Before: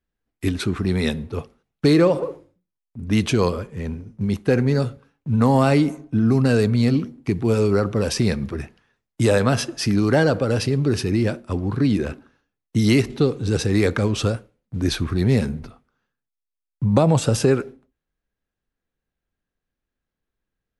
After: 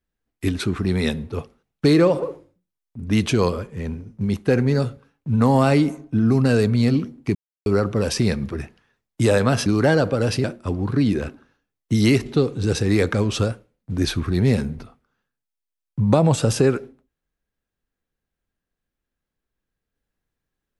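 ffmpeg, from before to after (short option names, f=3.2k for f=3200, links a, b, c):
-filter_complex "[0:a]asplit=5[a][b][c][d][e];[a]atrim=end=7.35,asetpts=PTS-STARTPTS,afade=t=out:st=7.346:d=0.004:c=hsin[f];[b]atrim=start=7.35:end=7.66,asetpts=PTS-STARTPTS,volume=0[g];[c]atrim=start=7.66:end=9.662,asetpts=PTS-STARTPTS,afade=t=in:d=0.004:c=hsin[h];[d]atrim=start=9.948:end=10.732[i];[e]atrim=start=11.278[j];[f][g][h]concat=n=3:v=0:a=1[k];[k][i]acrossfade=d=0.004:c1=hsin:c2=hsin[l];[l][j]acrossfade=d=0.004:c1=hsin:c2=hsin"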